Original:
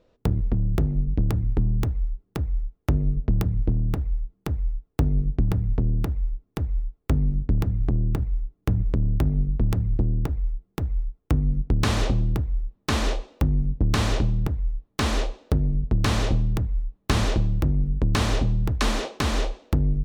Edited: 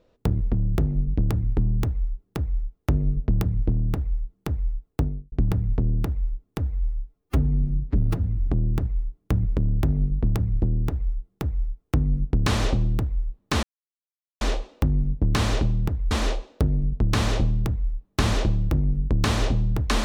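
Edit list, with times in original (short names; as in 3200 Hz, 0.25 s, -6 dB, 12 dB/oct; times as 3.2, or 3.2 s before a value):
4.89–5.32 studio fade out
6.61–7.87 stretch 1.5×
13 insert silence 0.78 s
14.7–15.02 cut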